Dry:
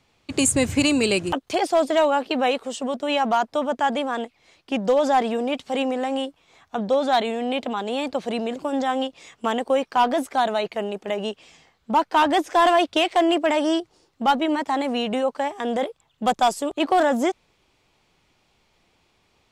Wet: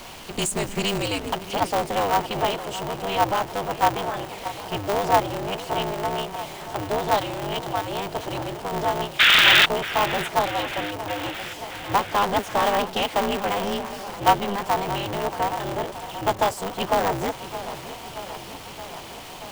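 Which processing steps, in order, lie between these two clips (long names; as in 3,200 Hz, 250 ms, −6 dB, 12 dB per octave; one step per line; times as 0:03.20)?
converter with a step at zero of −28.5 dBFS
hollow resonant body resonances 820/3,000 Hz, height 10 dB, ringing for 25 ms
sound drawn into the spectrogram noise, 0:09.19–0:09.66, 1,300–3,700 Hz −7 dBFS
on a send: delay with a low-pass on its return 627 ms, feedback 71%, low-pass 2,700 Hz, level −13.5 dB
on the sum: ring modulator with a square carrier 100 Hz
level −7.5 dB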